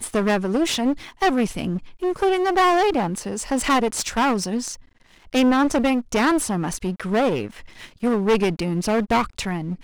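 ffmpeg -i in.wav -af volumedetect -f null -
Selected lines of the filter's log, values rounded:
mean_volume: -21.6 dB
max_volume: -9.6 dB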